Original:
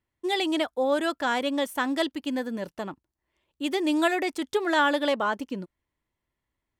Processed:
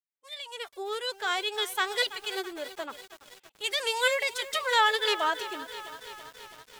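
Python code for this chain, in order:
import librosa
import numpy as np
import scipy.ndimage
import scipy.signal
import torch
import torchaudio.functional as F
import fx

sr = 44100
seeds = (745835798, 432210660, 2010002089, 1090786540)

p1 = fx.fade_in_head(x, sr, length_s=1.91)
p2 = fx.dynamic_eq(p1, sr, hz=4400.0, q=0.81, threshold_db=-41.0, ratio=4.0, max_db=3)
p3 = fx.highpass(p2, sr, hz=1300.0, slope=6)
p4 = fx.pitch_keep_formants(p3, sr, semitones=7.0)
p5 = 10.0 ** (-27.5 / 20.0) * np.tanh(p4 / 10.0 ** (-27.5 / 20.0))
p6 = p4 + (p5 * librosa.db_to_amplitude(-7.5))
p7 = fx.echo_crushed(p6, sr, ms=330, feedback_pct=80, bits=7, wet_db=-14.0)
y = p7 * librosa.db_to_amplitude(1.5)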